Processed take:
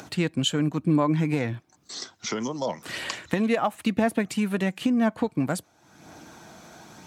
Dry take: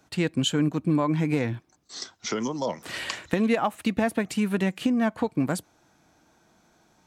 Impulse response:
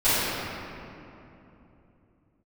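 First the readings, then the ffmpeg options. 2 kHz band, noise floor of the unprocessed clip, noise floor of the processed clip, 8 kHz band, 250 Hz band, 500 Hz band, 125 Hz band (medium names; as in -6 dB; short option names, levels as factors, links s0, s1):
0.0 dB, -64 dBFS, -62 dBFS, +0.5 dB, +0.5 dB, 0.0 dB, +0.5 dB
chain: -af "highpass=84,acompressor=mode=upward:threshold=0.0224:ratio=2.5,aphaser=in_gain=1:out_gain=1:delay=1.8:decay=0.23:speed=0.98:type=triangular"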